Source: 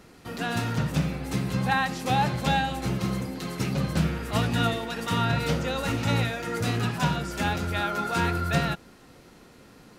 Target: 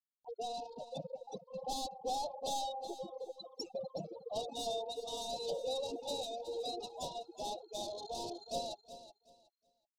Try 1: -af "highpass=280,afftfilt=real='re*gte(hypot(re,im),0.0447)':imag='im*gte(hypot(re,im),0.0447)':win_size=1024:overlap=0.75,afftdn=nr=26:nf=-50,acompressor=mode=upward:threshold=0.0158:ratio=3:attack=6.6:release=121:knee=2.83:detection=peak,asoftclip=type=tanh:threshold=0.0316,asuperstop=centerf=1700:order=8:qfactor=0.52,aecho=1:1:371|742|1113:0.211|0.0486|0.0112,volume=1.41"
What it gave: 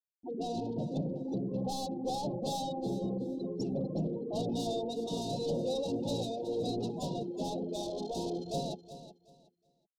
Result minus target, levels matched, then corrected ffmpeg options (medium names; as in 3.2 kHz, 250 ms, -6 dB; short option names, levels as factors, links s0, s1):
250 Hz band +11.0 dB
-af "highpass=650,afftfilt=real='re*gte(hypot(re,im),0.0447)':imag='im*gte(hypot(re,im),0.0447)':win_size=1024:overlap=0.75,afftdn=nr=26:nf=-50,acompressor=mode=upward:threshold=0.0158:ratio=3:attack=6.6:release=121:knee=2.83:detection=peak,asoftclip=type=tanh:threshold=0.0316,asuperstop=centerf=1700:order=8:qfactor=0.52,aecho=1:1:371|742|1113:0.211|0.0486|0.0112,volume=1.41"